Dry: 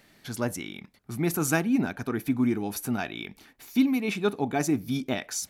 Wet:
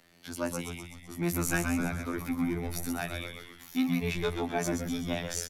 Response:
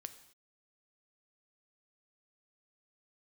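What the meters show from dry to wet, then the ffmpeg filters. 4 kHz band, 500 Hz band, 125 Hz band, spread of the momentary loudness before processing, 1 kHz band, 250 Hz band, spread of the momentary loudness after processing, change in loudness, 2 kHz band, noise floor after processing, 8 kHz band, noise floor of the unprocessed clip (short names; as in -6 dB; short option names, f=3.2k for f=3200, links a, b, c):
-2.0 dB, -3.5 dB, -2.0 dB, 14 LU, -3.5 dB, -5.5 dB, 11 LU, -4.5 dB, -2.0 dB, -53 dBFS, -2.5 dB, -61 dBFS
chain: -filter_complex "[0:a]afftfilt=real='hypot(re,im)*cos(PI*b)':imag='0':win_size=2048:overlap=0.75,acrossover=split=210|430|5100[a][b][c][d];[b]asoftclip=type=tanh:threshold=-36dB[e];[a][e][c][d]amix=inputs=4:normalize=0,asplit=8[f][g][h][i][j][k][l][m];[g]adelay=127,afreqshift=-86,volume=-6dB[n];[h]adelay=254,afreqshift=-172,volume=-10.9dB[o];[i]adelay=381,afreqshift=-258,volume=-15.8dB[p];[j]adelay=508,afreqshift=-344,volume=-20.6dB[q];[k]adelay=635,afreqshift=-430,volume=-25.5dB[r];[l]adelay=762,afreqshift=-516,volume=-30.4dB[s];[m]adelay=889,afreqshift=-602,volume=-35.3dB[t];[f][n][o][p][q][r][s][t]amix=inputs=8:normalize=0"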